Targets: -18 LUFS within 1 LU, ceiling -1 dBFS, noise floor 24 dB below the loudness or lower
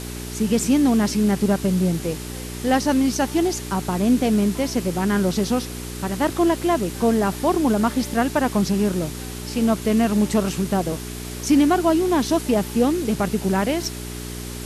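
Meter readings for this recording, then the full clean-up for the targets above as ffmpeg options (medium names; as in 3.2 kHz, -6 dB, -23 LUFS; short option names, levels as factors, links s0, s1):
hum 60 Hz; highest harmonic 420 Hz; hum level -31 dBFS; noise floor -32 dBFS; noise floor target -45 dBFS; loudness -21.0 LUFS; peak level -7.5 dBFS; loudness target -18.0 LUFS
-> -af "bandreject=f=60:t=h:w=4,bandreject=f=120:t=h:w=4,bandreject=f=180:t=h:w=4,bandreject=f=240:t=h:w=4,bandreject=f=300:t=h:w=4,bandreject=f=360:t=h:w=4,bandreject=f=420:t=h:w=4"
-af "afftdn=nr=13:nf=-32"
-af "volume=1.41"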